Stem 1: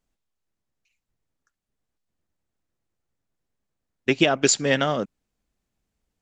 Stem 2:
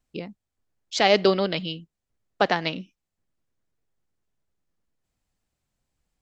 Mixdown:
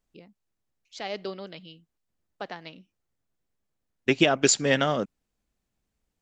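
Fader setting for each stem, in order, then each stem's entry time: −1.5, −15.5 decibels; 0.00, 0.00 seconds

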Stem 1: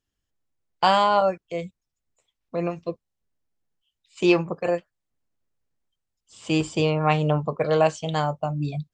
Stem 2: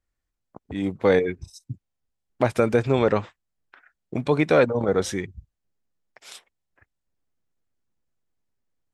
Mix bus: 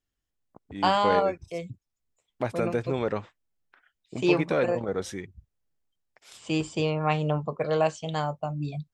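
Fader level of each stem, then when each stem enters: −4.5, −8.0 decibels; 0.00, 0.00 seconds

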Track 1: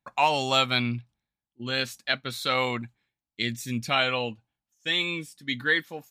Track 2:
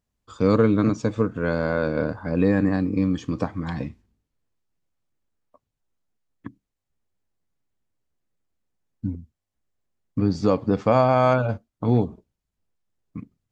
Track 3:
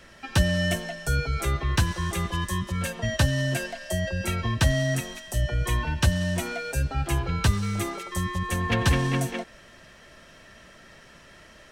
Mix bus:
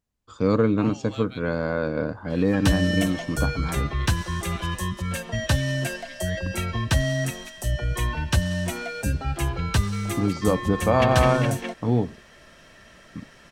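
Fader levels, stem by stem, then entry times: −19.0, −2.0, 0.0 decibels; 0.60, 0.00, 2.30 seconds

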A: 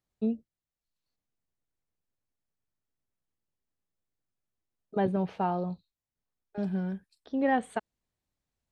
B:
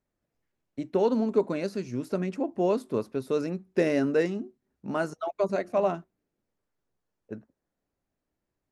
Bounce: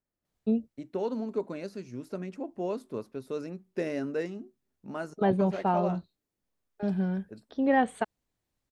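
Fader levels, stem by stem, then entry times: +2.5, −7.5 decibels; 0.25, 0.00 seconds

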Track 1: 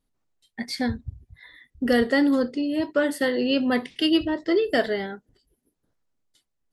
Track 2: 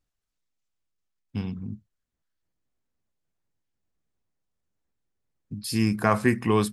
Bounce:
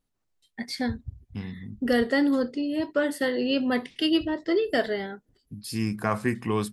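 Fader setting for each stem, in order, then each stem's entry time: −2.5, −4.5 decibels; 0.00, 0.00 seconds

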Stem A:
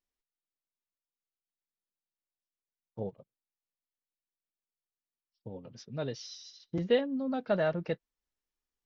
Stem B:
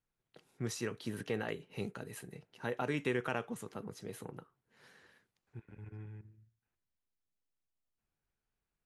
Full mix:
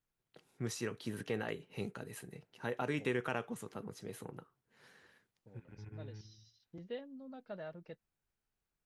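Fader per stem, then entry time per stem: −17.0, −1.0 decibels; 0.00, 0.00 seconds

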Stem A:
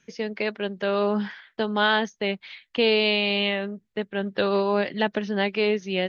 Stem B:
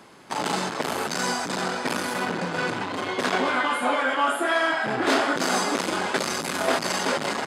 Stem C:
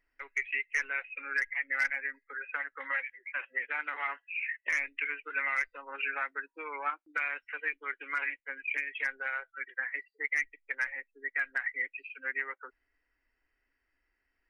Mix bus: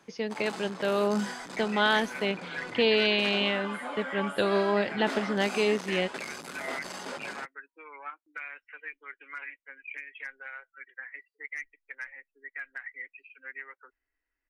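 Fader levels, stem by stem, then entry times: −3.0, −14.0, −7.5 decibels; 0.00, 0.00, 1.20 seconds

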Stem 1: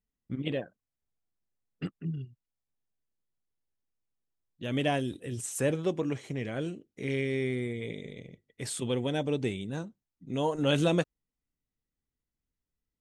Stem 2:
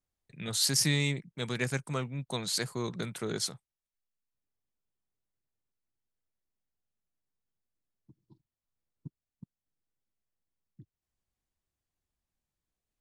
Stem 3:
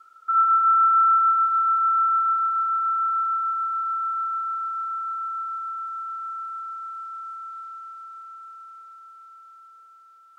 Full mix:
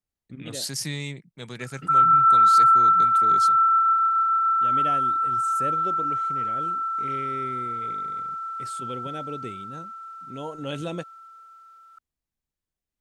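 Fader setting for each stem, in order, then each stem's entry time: −6.0, −3.5, +2.0 decibels; 0.00, 0.00, 1.60 seconds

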